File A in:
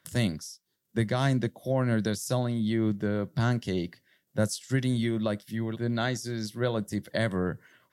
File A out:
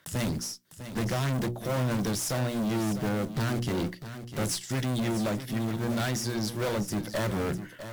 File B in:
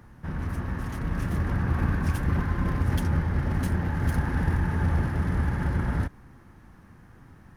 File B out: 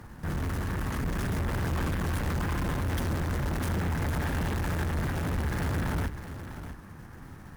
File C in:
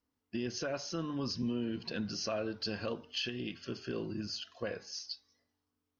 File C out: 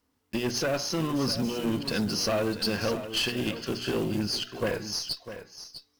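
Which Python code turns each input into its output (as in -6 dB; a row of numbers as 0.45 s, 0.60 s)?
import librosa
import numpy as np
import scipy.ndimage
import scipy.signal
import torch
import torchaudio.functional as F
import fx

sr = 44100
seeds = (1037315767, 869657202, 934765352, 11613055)

p1 = fx.block_float(x, sr, bits=5)
p2 = fx.hum_notches(p1, sr, base_hz=60, count=6)
p3 = fx.tube_stage(p2, sr, drive_db=35.0, bias=0.5)
p4 = p3 + fx.echo_single(p3, sr, ms=651, db=-11.5, dry=0)
y = p4 * 10.0 ** (-30 / 20.0) / np.sqrt(np.mean(np.square(p4)))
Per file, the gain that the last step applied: +9.0 dB, +7.5 dB, +13.0 dB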